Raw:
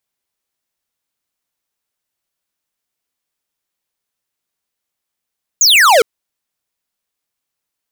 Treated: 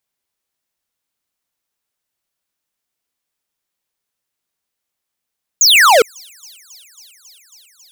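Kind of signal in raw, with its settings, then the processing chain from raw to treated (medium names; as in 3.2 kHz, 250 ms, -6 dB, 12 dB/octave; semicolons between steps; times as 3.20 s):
laser zap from 7.2 kHz, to 420 Hz, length 0.41 s square, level -8 dB
feedback echo behind a high-pass 273 ms, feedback 84%, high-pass 5.3 kHz, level -23.5 dB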